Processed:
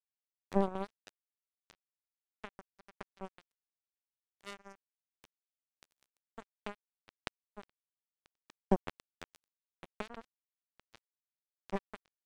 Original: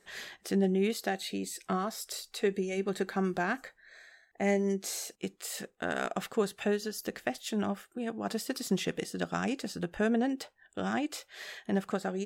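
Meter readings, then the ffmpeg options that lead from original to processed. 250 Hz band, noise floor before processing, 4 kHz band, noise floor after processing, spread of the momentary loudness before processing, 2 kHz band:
-12.0 dB, -68 dBFS, -16.5 dB, under -85 dBFS, 10 LU, -16.0 dB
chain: -filter_complex "[0:a]acrossover=split=250[s0][s1];[s1]acompressor=threshold=0.00282:ratio=2[s2];[s0][s2]amix=inputs=2:normalize=0,acrusher=bits=3:mix=0:aa=0.5,volume=2.66"

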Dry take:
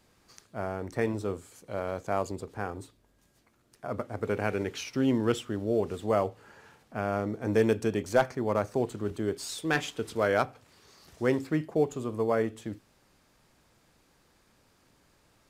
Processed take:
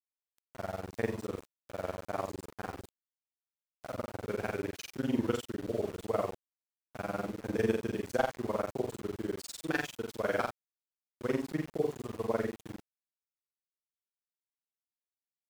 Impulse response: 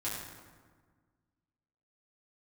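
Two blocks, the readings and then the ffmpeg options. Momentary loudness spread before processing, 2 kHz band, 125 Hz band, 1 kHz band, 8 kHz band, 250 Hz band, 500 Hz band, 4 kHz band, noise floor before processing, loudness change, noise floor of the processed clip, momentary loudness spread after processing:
11 LU, -5.0 dB, -6.5 dB, -5.5 dB, -5.5 dB, -5.5 dB, -6.0 dB, -6.0 dB, -66 dBFS, -5.5 dB, under -85 dBFS, 11 LU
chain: -af "tremolo=f=20:d=0.98,aecho=1:1:43.73|84.55:0.794|0.355,aeval=exprs='val(0)*gte(abs(val(0)),0.01)':c=same,volume=0.631"

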